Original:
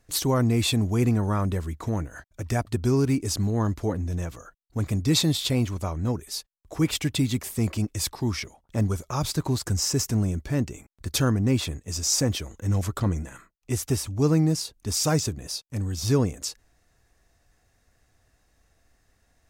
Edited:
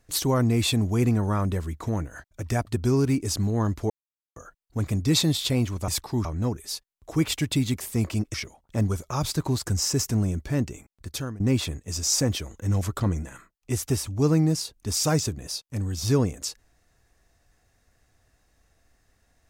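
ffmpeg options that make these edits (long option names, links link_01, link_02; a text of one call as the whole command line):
ffmpeg -i in.wav -filter_complex "[0:a]asplit=7[link_01][link_02][link_03][link_04][link_05][link_06][link_07];[link_01]atrim=end=3.9,asetpts=PTS-STARTPTS,afade=type=out:start_time=3.896:duration=0.004:curve=hsin[link_08];[link_02]atrim=start=3.9:end=4.36,asetpts=PTS-STARTPTS,volume=0[link_09];[link_03]atrim=start=4.36:end=5.882,asetpts=PTS-STARTPTS,afade=type=in:duration=0.004:curve=hsin[link_10];[link_04]atrim=start=7.968:end=8.342[link_11];[link_05]atrim=start=5.878:end=7.972[link_12];[link_06]atrim=start=8.338:end=11.4,asetpts=PTS-STARTPTS,afade=type=out:start_time=2.382:duration=0.68:silence=0.133352[link_13];[link_07]atrim=start=11.4,asetpts=PTS-STARTPTS,afade=type=in:duration=0.004:curve=hsin:silence=0.133352[link_14];[link_08][link_09][link_10]concat=n=3:v=0:a=1[link_15];[link_15][link_11]acrossfade=duration=0.004:curve1=hsin:curve2=hsin[link_16];[link_16][link_12]acrossfade=duration=0.004:curve1=hsin:curve2=hsin[link_17];[link_13][link_14]concat=n=2:v=0:a=1[link_18];[link_17][link_18]acrossfade=duration=0.004:curve1=hsin:curve2=hsin" out.wav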